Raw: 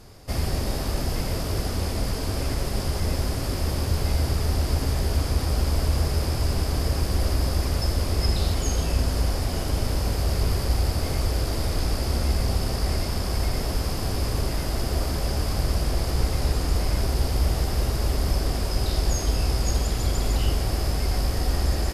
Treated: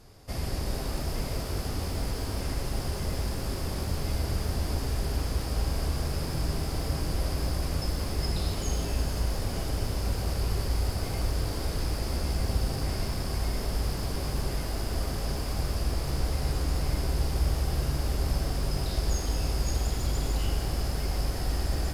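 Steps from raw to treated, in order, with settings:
reverb with rising layers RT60 3 s, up +12 semitones, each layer −8 dB, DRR 5.5 dB
level −6.5 dB

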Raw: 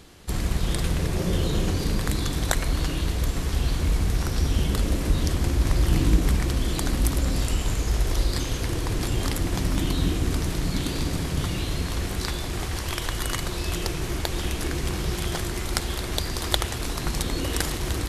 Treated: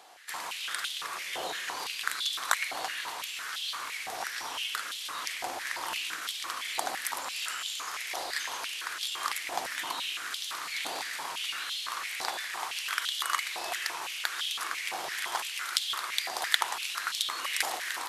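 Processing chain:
high-pass on a step sequencer 5.9 Hz 760–3,300 Hz
level −4 dB

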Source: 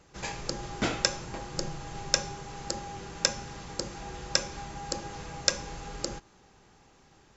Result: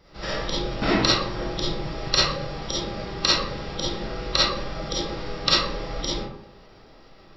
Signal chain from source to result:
comb and all-pass reverb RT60 0.78 s, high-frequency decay 0.55×, pre-delay 10 ms, DRR −8 dB
formants moved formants −5 semitones
level +1 dB

